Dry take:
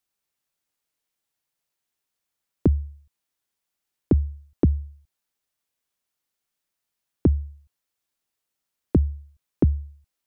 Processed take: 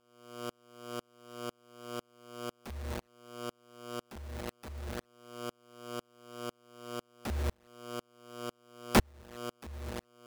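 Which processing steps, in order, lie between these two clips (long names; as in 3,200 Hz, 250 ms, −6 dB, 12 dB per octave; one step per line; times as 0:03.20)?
flat-topped bell 810 Hz +9.5 dB
downward compressor 8 to 1, threshold −25 dBFS, peak gain reduction 11.5 dB
hum with harmonics 120 Hz, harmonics 5, −48 dBFS 0 dB per octave
bit reduction 7 bits
wrap-around overflow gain 24.5 dB
tremolo with a ramp in dB swelling 2 Hz, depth 39 dB
level +10 dB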